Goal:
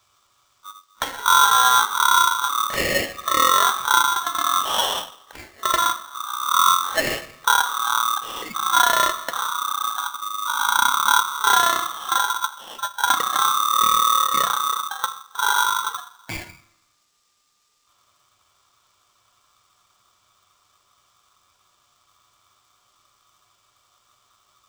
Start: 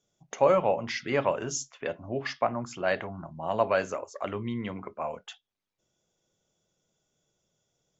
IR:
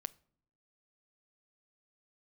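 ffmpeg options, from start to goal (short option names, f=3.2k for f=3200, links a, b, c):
-filter_complex "[0:a]acontrast=50,lowshelf=f=420:g=12,asplit=2[a][b];[1:a]atrim=start_sample=2205,afade=t=out:st=0.39:d=0.01,atrim=end_sample=17640,lowshelf=f=390:g=-11[c];[b][c]afir=irnorm=-1:irlink=0,volume=12.5dB[d];[a][d]amix=inputs=2:normalize=0,alimiter=limit=0dB:level=0:latency=1:release=263,asetrate=14288,aresample=44100,aexciter=amount=12.6:drive=3:freq=3.7k,aeval=exprs='val(0)*sgn(sin(2*PI*1200*n/s))':c=same,volume=-7dB"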